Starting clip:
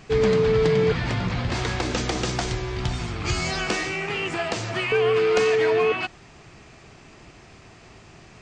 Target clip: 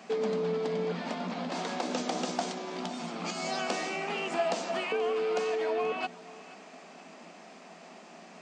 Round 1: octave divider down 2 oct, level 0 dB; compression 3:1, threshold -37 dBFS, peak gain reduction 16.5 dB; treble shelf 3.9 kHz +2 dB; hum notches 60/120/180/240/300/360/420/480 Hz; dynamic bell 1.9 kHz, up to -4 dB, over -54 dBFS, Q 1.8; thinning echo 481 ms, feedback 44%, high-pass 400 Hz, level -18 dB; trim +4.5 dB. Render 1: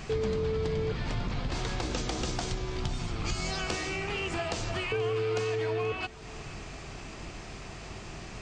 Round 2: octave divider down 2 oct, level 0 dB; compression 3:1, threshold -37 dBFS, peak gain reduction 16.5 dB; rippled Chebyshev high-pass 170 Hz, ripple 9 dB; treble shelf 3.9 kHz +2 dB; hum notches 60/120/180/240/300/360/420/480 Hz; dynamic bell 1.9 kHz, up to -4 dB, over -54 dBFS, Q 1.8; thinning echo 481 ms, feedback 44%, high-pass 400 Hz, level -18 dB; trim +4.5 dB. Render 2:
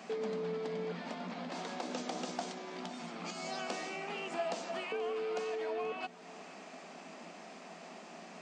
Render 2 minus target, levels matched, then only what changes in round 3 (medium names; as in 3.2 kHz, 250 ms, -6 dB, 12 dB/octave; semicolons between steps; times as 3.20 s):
compression: peak gain reduction +7 dB
change: compression 3:1, threshold -26.5 dBFS, peak gain reduction 9.5 dB